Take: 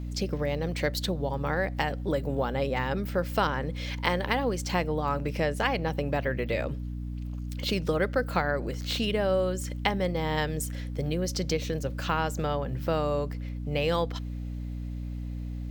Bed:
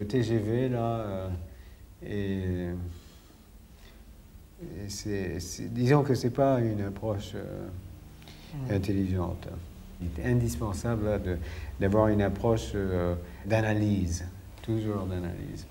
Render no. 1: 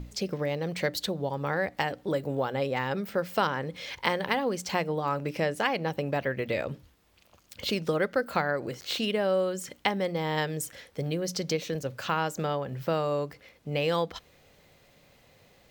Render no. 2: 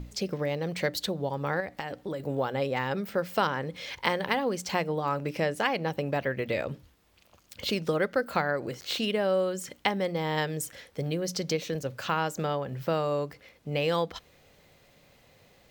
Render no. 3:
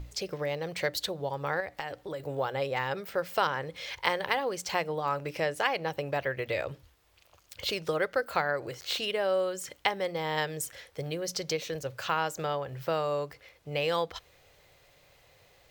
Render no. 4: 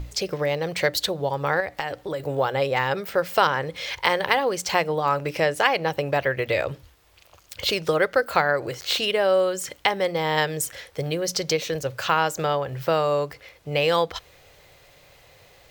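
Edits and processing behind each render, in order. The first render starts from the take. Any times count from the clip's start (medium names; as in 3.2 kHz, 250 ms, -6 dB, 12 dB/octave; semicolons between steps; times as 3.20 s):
hum notches 60/120/180/240/300 Hz
1.60–2.20 s: compression, threshold -30 dBFS
peaking EQ 220 Hz -14.5 dB 0.85 oct
trim +8 dB; peak limiter -2 dBFS, peak gain reduction 3 dB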